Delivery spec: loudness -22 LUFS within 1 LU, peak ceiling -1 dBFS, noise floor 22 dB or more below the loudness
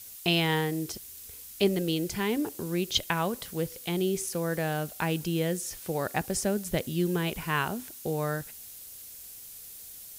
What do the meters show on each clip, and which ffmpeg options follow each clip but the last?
noise floor -46 dBFS; noise floor target -52 dBFS; loudness -30.0 LUFS; peak level -9.5 dBFS; loudness target -22.0 LUFS
-> -af "afftdn=nr=6:nf=-46"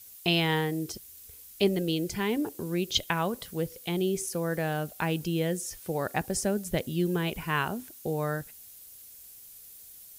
noise floor -50 dBFS; noise floor target -52 dBFS
-> -af "afftdn=nr=6:nf=-50"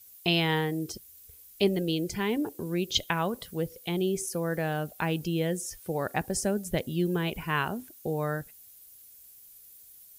noise floor -53 dBFS; loudness -30.0 LUFS; peak level -9.5 dBFS; loudness target -22.0 LUFS
-> -af "volume=2.51"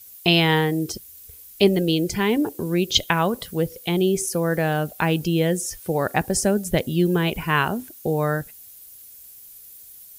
loudness -22.0 LUFS; peak level -1.5 dBFS; noise floor -45 dBFS

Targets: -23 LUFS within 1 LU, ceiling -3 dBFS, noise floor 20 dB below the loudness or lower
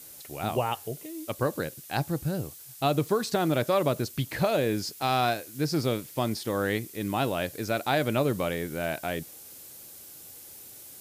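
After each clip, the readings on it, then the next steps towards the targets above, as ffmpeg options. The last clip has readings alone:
noise floor -47 dBFS; noise floor target -49 dBFS; loudness -29.0 LUFS; peak level -11.5 dBFS; loudness target -23.0 LUFS
-> -af "afftdn=nr=6:nf=-47"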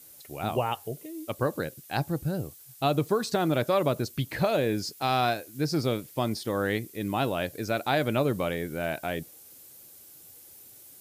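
noise floor -51 dBFS; loudness -29.0 LUFS; peak level -11.5 dBFS; loudness target -23.0 LUFS
-> -af "volume=2"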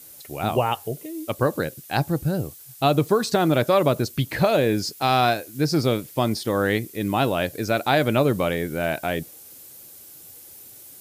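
loudness -23.0 LUFS; peak level -5.5 dBFS; noise floor -45 dBFS

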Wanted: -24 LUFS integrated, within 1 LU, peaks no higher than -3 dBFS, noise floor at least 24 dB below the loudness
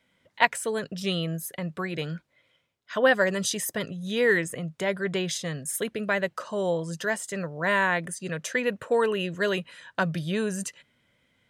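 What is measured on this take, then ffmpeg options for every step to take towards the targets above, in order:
loudness -27.5 LUFS; peak level -2.0 dBFS; loudness target -24.0 LUFS
-> -af "volume=1.5,alimiter=limit=0.708:level=0:latency=1"

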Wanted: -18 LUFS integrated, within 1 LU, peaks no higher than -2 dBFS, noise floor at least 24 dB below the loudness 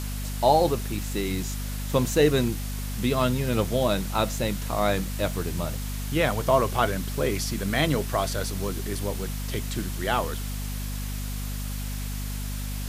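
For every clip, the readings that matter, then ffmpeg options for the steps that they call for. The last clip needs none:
hum 50 Hz; highest harmonic 250 Hz; hum level -29 dBFS; noise floor -31 dBFS; noise floor target -51 dBFS; loudness -27.0 LUFS; peak level -7.0 dBFS; loudness target -18.0 LUFS
-> -af "bandreject=f=50:t=h:w=6,bandreject=f=100:t=h:w=6,bandreject=f=150:t=h:w=6,bandreject=f=200:t=h:w=6,bandreject=f=250:t=h:w=6"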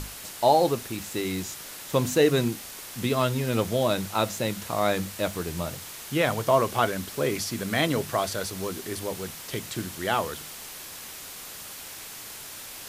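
hum not found; noise floor -41 dBFS; noise floor target -51 dBFS
-> -af "afftdn=nr=10:nf=-41"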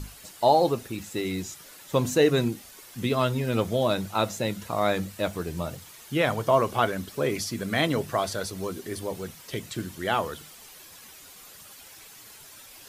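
noise floor -48 dBFS; noise floor target -51 dBFS
-> -af "afftdn=nr=6:nf=-48"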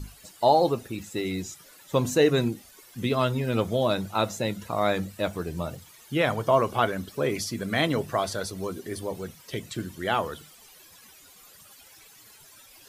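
noise floor -53 dBFS; loudness -27.0 LUFS; peak level -7.0 dBFS; loudness target -18.0 LUFS
-> -af "volume=2.82,alimiter=limit=0.794:level=0:latency=1"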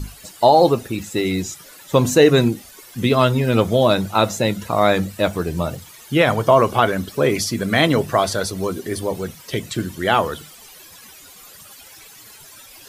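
loudness -18.5 LUFS; peak level -2.0 dBFS; noise floor -44 dBFS

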